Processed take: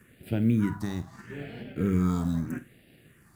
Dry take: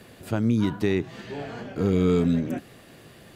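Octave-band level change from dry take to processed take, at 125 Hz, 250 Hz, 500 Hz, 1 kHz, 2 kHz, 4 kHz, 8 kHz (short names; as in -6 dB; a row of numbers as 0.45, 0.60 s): -2.0 dB, -3.5 dB, -11.0 dB, -4.0 dB, -5.5 dB, -9.0 dB, n/a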